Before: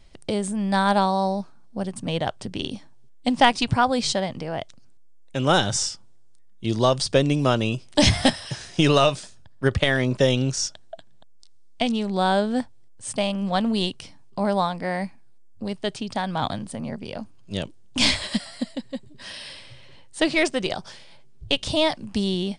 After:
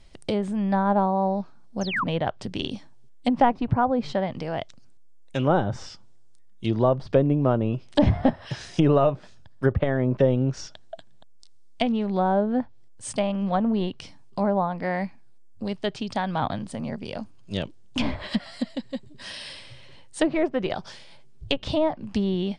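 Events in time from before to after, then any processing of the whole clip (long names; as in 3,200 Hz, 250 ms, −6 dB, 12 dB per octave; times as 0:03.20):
0:01.81–0:02.04: sound drawn into the spectrogram fall 930–6,800 Hz −24 dBFS
whole clip: treble cut that deepens with the level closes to 940 Hz, closed at −17.5 dBFS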